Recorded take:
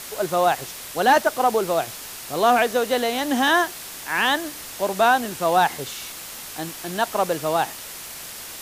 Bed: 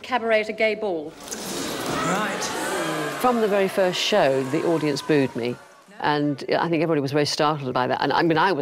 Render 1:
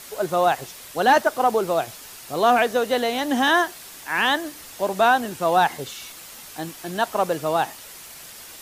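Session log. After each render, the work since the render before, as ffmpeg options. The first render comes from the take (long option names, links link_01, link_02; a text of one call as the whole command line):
ffmpeg -i in.wav -af "afftdn=noise_reduction=6:noise_floor=-37" out.wav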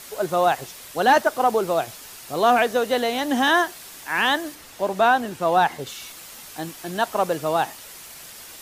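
ffmpeg -i in.wav -filter_complex "[0:a]asettb=1/sr,asplit=3[link_01][link_02][link_03];[link_01]atrim=end=4.554[link_04];[link_02]atrim=start=4.55:end=5.87,asetpts=PTS-STARTPTS,afade=type=in:duration=0.004:curve=qsin,afade=type=out:start_time=1.316:duration=0.004:curve=qsin,highshelf=frequency=4800:gain=-6[link_05];[link_03]atrim=start=5.866[link_06];[link_04][link_05]acrossfade=duration=0.004:curve1=hsin:curve2=qsin[link_07];[link_07][link_06]acrossfade=duration=0.004:curve1=qsin:curve2=hsin" out.wav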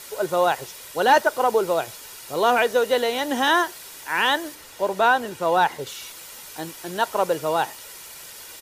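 ffmpeg -i in.wav -af "lowshelf=frequency=130:gain=-5.5,aecho=1:1:2.1:0.35" out.wav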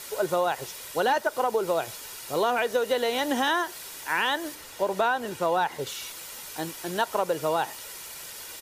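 ffmpeg -i in.wav -af "acompressor=threshold=-21dB:ratio=6" out.wav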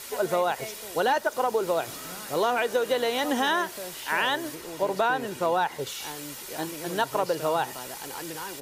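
ffmpeg -i in.wav -i bed.wav -filter_complex "[1:a]volume=-19dB[link_01];[0:a][link_01]amix=inputs=2:normalize=0" out.wav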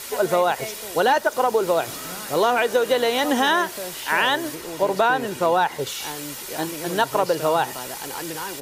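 ffmpeg -i in.wav -af "volume=5.5dB" out.wav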